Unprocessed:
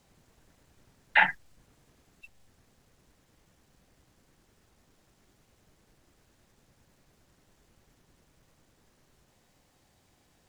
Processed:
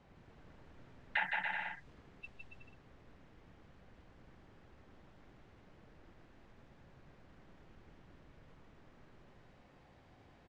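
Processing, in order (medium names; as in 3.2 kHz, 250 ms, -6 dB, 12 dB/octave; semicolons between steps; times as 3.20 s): bouncing-ball echo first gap 160 ms, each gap 0.75×, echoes 5; compression 2.5:1, threshold -44 dBFS, peak gain reduction 18 dB; level-controlled noise filter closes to 2.2 kHz, open at -34 dBFS; trim +3 dB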